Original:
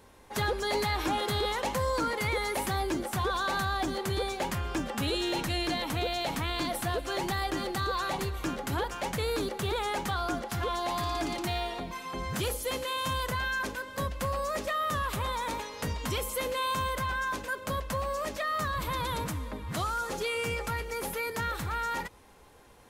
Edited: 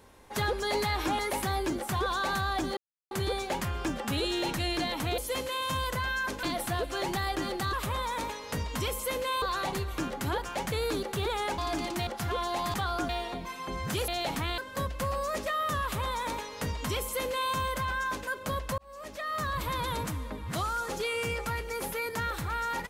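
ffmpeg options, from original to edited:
-filter_complex "[0:a]asplit=14[a][b][c][d][e][f][g][h][i][j][k][l][m][n];[a]atrim=end=1.192[o];[b]atrim=start=2.428:end=4.01,asetpts=PTS-STARTPTS,afade=t=out:st=1.578:d=0.004:c=hsin,apad=pad_dur=0.34[p];[c]atrim=start=4.01:end=6.082,asetpts=PTS-STARTPTS,afade=t=in:d=0.004:c=hsin[q];[d]atrim=start=12.538:end=13.792[r];[e]atrim=start=6.578:end=7.882[s];[f]atrim=start=15.028:end=16.722[t];[g]atrim=start=7.878:end=10.042[u];[h]atrim=start=11.058:end=11.552[v];[i]atrim=start=10.388:end=11.062[w];[j]atrim=start=10.038:end=10.392[x];[k]atrim=start=11.548:end=12.542[y];[l]atrim=start=6.078:end=6.582[z];[m]atrim=start=13.788:end=17.99,asetpts=PTS-STARTPTS,afade=t=out:st=4.198:d=0.004:c=hsin[aa];[n]atrim=start=17.99,asetpts=PTS-STARTPTS,afade=t=in:d=0.72[ab];[p][q]concat=n=2:v=0:a=1[ac];[o][ac]acrossfade=d=0.004:c1=hsin:c2=hsin[ad];[ad][r]acrossfade=d=0.004:c1=hsin:c2=hsin[ae];[ae][s]acrossfade=d=0.004:c1=hsin:c2=hsin[af];[af][t]acrossfade=d=0.004:c1=hsin:c2=hsin[ag];[ag][u]acrossfade=d=0.004:c1=hsin:c2=hsin[ah];[ah][v]acrossfade=d=0.004:c1=hsin:c2=hsin[ai];[ai][w]acrossfade=d=0.004:c1=hsin:c2=hsin[aj];[aj][x]acrossfade=d=0.004:c1=hsin:c2=hsin[ak];[ak][y]acrossfade=d=0.004:c1=hsin:c2=hsin[al];[al][z]acrossfade=d=0.004:c1=hsin:c2=hsin[am];[aa][ab]concat=n=2:v=0:a=1[an];[am][an]acrossfade=d=0.004:c1=hsin:c2=hsin"

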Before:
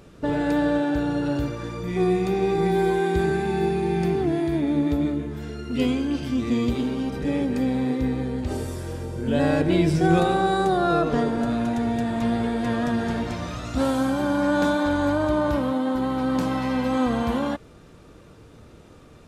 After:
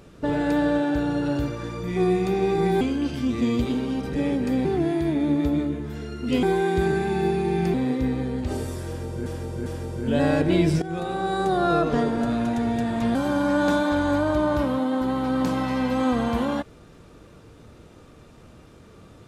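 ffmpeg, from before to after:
-filter_complex "[0:a]asplit=9[a][b][c][d][e][f][g][h][i];[a]atrim=end=2.812[j];[b]atrim=start=5.898:end=7.742[k];[c]atrim=start=4.118:end=5.902[l];[d]atrim=start=2.808:end=4.122[m];[e]atrim=start=7.738:end=9.262[n];[f]atrim=start=8.858:end=9.262[o];[g]atrim=start=8.858:end=10.02,asetpts=PTS-STARTPTS,afade=t=out:st=1.158:d=0.004:c=hsin:silence=0.141254[p];[h]atrim=start=10.02:end=12.352,asetpts=PTS-STARTPTS,afade=t=in:d=0.82:silence=0.141254[q];[i]atrim=start=14.088[r];[j][k]acrossfade=d=0.004:c1=hsin:c2=hsin[s];[s][l]acrossfade=d=0.004:c1=hsin:c2=hsin[t];[t][m]acrossfade=d=0.004:c1=hsin:c2=hsin[u];[u][n]acrossfade=d=0.004:c1=hsin:c2=hsin[v];[v][o]acrossfade=d=0.004:c1=hsin:c2=hsin[w];[p][q]concat=n=2:v=0:a=1[x];[w][x]acrossfade=d=0.004:c1=hsin:c2=hsin[y];[y][r]acrossfade=d=0.004:c1=hsin:c2=hsin"

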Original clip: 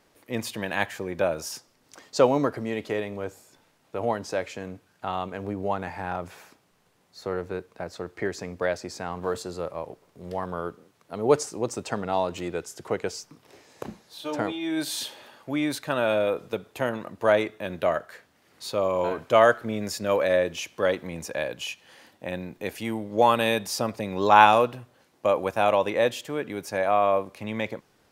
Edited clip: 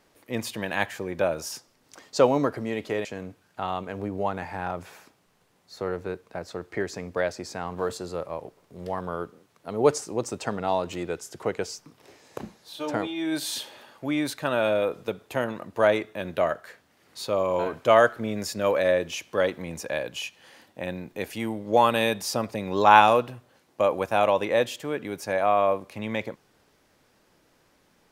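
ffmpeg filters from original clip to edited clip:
-filter_complex "[0:a]asplit=2[a][b];[a]atrim=end=3.052[c];[b]atrim=start=4.498[d];[c][d]acrossfade=d=0.004:c1=hsin:c2=hsin"

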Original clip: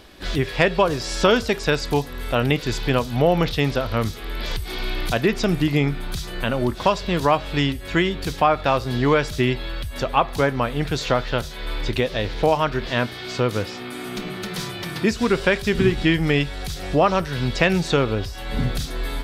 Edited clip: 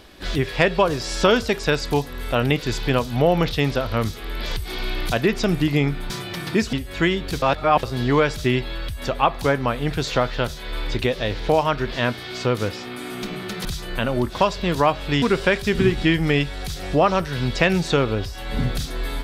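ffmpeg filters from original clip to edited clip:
-filter_complex "[0:a]asplit=7[a][b][c][d][e][f][g];[a]atrim=end=6.102[h];[b]atrim=start=14.588:end=15.222[i];[c]atrim=start=7.668:end=8.362[j];[d]atrim=start=8.358:end=8.772,asetpts=PTS-STARTPTS,areverse[k];[e]atrim=start=8.768:end=14.592[l];[f]atrim=start=6.098:end=7.672[m];[g]atrim=start=15.218[n];[h][i]acrossfade=d=0.004:c1=hsin:c2=hsin[o];[o][j]acrossfade=d=0.004:c1=hsin:c2=hsin[p];[p][k]acrossfade=d=0.004:c1=hsin:c2=hsin[q];[q][l]acrossfade=d=0.004:c1=hsin:c2=hsin[r];[r][m]acrossfade=d=0.004:c1=hsin:c2=hsin[s];[s][n]acrossfade=d=0.004:c1=hsin:c2=hsin"

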